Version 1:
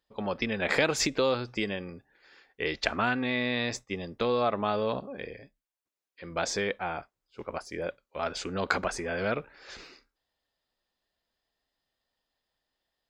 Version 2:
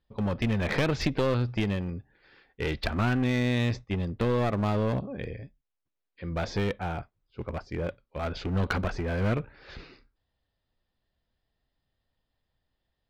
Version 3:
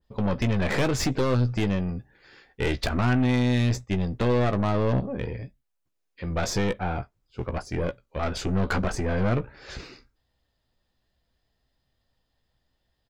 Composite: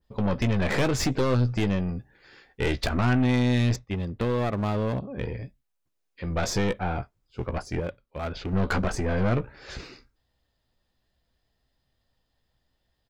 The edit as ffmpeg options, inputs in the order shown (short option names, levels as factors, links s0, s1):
-filter_complex "[1:a]asplit=2[s0][s1];[2:a]asplit=3[s2][s3][s4];[s2]atrim=end=3.762[s5];[s0]atrim=start=3.758:end=5.172[s6];[s3]atrim=start=5.168:end=7.802[s7];[s1]atrim=start=7.798:end=8.532[s8];[s4]atrim=start=8.528[s9];[s5][s6]acrossfade=d=0.004:c1=hsin:c2=hsin[s10];[s10][s7]acrossfade=d=0.004:c1=hsin:c2=hsin[s11];[s11][s8]acrossfade=d=0.004:c1=hsin:c2=hsin[s12];[s12][s9]acrossfade=d=0.004:c1=hsin:c2=hsin"